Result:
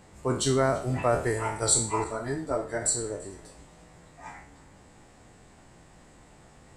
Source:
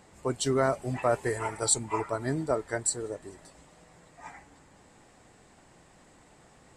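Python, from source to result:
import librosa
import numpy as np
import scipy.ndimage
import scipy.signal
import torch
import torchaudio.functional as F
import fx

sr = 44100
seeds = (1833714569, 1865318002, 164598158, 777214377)

y = fx.spec_trails(x, sr, decay_s=0.46)
y = fx.low_shelf(y, sr, hz=140.0, db=7.5)
y = y + 10.0 ** (-23.0 / 20.0) * np.pad(y, (int(339 * sr / 1000.0), 0))[:len(y)]
y = fx.ensemble(y, sr, at=(2.04, 2.82))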